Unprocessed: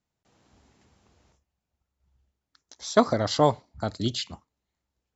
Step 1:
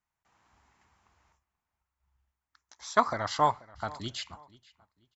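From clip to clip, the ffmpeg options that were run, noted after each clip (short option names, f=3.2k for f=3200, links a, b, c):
-filter_complex "[0:a]equalizer=f=125:t=o:w=1:g=-5,equalizer=f=250:t=o:w=1:g=-6,equalizer=f=500:t=o:w=1:g=-8,equalizer=f=1k:t=o:w=1:g=9,equalizer=f=2k:t=o:w=1:g=5,equalizer=f=4k:t=o:w=1:g=-4,asplit=2[a][b];[b]adelay=484,lowpass=f=4.6k:p=1,volume=-21dB,asplit=2[c][d];[d]adelay=484,lowpass=f=4.6k:p=1,volume=0.31[e];[a][c][e]amix=inputs=3:normalize=0,volume=-5dB"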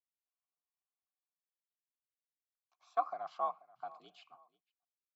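-filter_complex "[0:a]agate=range=-26dB:threshold=-58dB:ratio=16:detection=peak,afreqshift=59,asplit=3[a][b][c];[a]bandpass=f=730:t=q:w=8,volume=0dB[d];[b]bandpass=f=1.09k:t=q:w=8,volume=-6dB[e];[c]bandpass=f=2.44k:t=q:w=8,volume=-9dB[f];[d][e][f]amix=inputs=3:normalize=0,volume=-3.5dB"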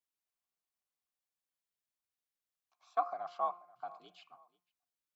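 -af "bandreject=f=176:t=h:w=4,bandreject=f=352:t=h:w=4,bandreject=f=528:t=h:w=4,bandreject=f=704:t=h:w=4,bandreject=f=880:t=h:w=4,bandreject=f=1.056k:t=h:w=4,bandreject=f=1.232k:t=h:w=4,bandreject=f=1.408k:t=h:w=4,bandreject=f=1.584k:t=h:w=4,bandreject=f=1.76k:t=h:w=4,bandreject=f=1.936k:t=h:w=4,bandreject=f=2.112k:t=h:w=4,bandreject=f=2.288k:t=h:w=4,bandreject=f=2.464k:t=h:w=4,volume=1dB"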